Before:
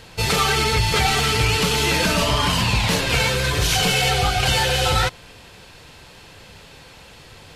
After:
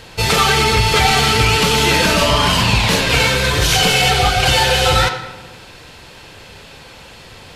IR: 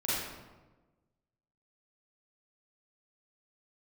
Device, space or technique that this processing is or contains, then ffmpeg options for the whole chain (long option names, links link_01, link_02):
filtered reverb send: -filter_complex "[0:a]asplit=2[link_01][link_02];[link_02]highpass=frequency=150:width=0.5412,highpass=frequency=150:width=1.3066,lowpass=7000[link_03];[1:a]atrim=start_sample=2205[link_04];[link_03][link_04]afir=irnorm=-1:irlink=0,volume=-13.5dB[link_05];[link_01][link_05]amix=inputs=2:normalize=0,volume=4dB"